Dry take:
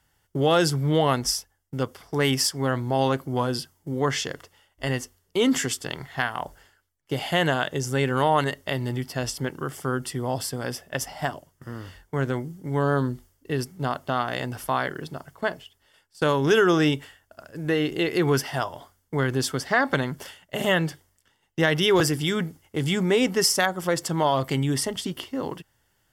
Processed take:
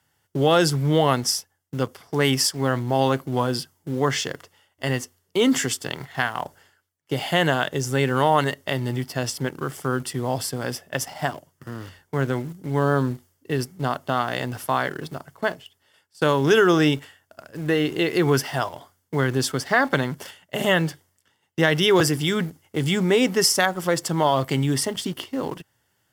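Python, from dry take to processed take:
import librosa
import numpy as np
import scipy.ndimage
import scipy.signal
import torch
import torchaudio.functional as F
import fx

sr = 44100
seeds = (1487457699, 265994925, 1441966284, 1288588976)

p1 = scipy.signal.sosfilt(scipy.signal.butter(4, 81.0, 'highpass', fs=sr, output='sos'), x)
p2 = fx.quant_dither(p1, sr, seeds[0], bits=6, dither='none')
y = p1 + (p2 * 10.0 ** (-11.0 / 20.0))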